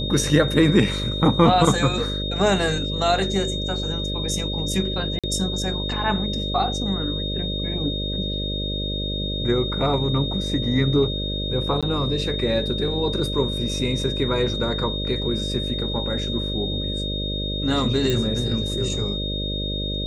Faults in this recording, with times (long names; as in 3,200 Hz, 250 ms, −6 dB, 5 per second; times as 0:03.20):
mains buzz 50 Hz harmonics 12 −28 dBFS
whistle 3,700 Hz −28 dBFS
0:05.19–0:05.24: drop-out 46 ms
0:11.81–0:11.83: drop-out 16 ms
0:18.10: click −10 dBFS